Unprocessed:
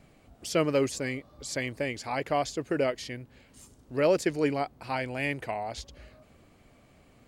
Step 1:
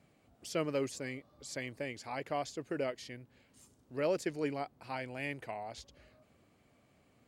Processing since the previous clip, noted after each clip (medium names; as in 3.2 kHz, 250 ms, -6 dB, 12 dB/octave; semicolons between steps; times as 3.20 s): high-pass 80 Hz; trim -8.5 dB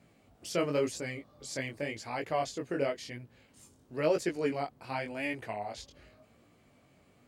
chorus 0.93 Hz, delay 17 ms, depth 5.6 ms; trim +7 dB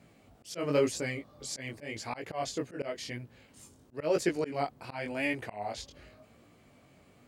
slow attack 165 ms; trim +3.5 dB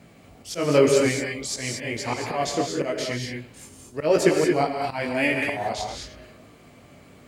gated-style reverb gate 250 ms rising, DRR 2 dB; trim +8.5 dB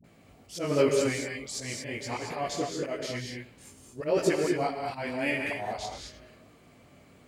phase dispersion highs, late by 42 ms, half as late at 550 Hz; trim -6.5 dB